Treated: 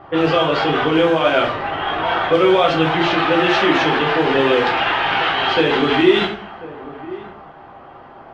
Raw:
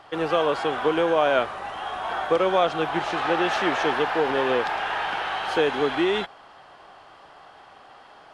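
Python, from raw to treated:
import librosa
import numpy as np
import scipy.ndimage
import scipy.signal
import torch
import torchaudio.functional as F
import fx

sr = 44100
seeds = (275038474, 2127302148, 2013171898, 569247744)

p1 = fx.over_compress(x, sr, threshold_db=-29.0, ratio=-1.0)
p2 = x + (p1 * 10.0 ** (-3.0 / 20.0))
p3 = fx.quant_dither(p2, sr, seeds[0], bits=8, dither='triangular')
p4 = fx.weighting(p3, sr, curve='D')
p5 = fx.dereverb_blind(p4, sr, rt60_s=0.5)
p6 = fx.riaa(p5, sr, side='playback')
p7 = p6 + 10.0 ** (-17.0 / 20.0) * np.pad(p6, (int(1043 * sr / 1000.0), 0))[:len(p6)]
p8 = fx.room_shoebox(p7, sr, seeds[1], volume_m3=56.0, walls='mixed', distance_m=0.81)
p9 = fx.env_lowpass(p8, sr, base_hz=970.0, full_db=-8.5)
y = p9 * 10.0 ** (-1.0 / 20.0)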